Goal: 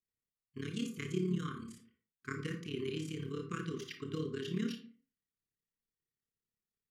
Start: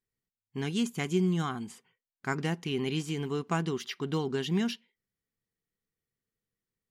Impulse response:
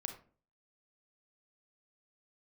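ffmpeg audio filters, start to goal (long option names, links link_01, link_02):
-filter_complex "[0:a]tremolo=f=35:d=0.857,asuperstop=centerf=730:order=20:qfactor=1.3[link_01];[1:a]atrim=start_sample=2205[link_02];[link_01][link_02]afir=irnorm=-1:irlink=0,volume=-3dB"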